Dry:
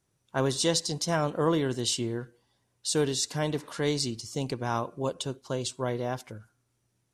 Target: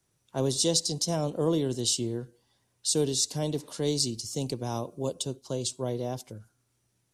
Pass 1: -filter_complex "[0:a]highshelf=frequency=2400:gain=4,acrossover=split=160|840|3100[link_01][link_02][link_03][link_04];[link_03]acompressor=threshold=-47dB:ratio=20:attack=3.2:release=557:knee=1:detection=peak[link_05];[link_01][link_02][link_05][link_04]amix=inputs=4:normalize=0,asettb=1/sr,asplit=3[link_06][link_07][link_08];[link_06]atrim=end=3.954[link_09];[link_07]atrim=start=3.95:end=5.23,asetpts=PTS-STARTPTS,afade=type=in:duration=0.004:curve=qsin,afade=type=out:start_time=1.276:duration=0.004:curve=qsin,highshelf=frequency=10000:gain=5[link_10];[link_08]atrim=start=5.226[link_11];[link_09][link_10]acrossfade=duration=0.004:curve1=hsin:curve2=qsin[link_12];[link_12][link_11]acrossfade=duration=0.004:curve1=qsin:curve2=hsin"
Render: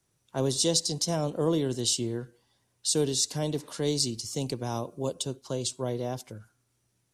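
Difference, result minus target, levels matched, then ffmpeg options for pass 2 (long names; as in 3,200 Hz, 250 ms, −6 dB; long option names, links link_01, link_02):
downward compressor: peak gain reduction −9 dB
-filter_complex "[0:a]highshelf=frequency=2400:gain=4,acrossover=split=160|840|3100[link_01][link_02][link_03][link_04];[link_03]acompressor=threshold=-56.5dB:ratio=20:attack=3.2:release=557:knee=1:detection=peak[link_05];[link_01][link_02][link_05][link_04]amix=inputs=4:normalize=0,asettb=1/sr,asplit=3[link_06][link_07][link_08];[link_06]atrim=end=3.954[link_09];[link_07]atrim=start=3.95:end=5.23,asetpts=PTS-STARTPTS,afade=type=in:duration=0.004:curve=qsin,afade=type=out:start_time=1.276:duration=0.004:curve=qsin,highshelf=frequency=10000:gain=5[link_10];[link_08]atrim=start=5.226[link_11];[link_09][link_10]acrossfade=duration=0.004:curve1=hsin:curve2=qsin[link_12];[link_12][link_11]acrossfade=duration=0.004:curve1=qsin:curve2=hsin"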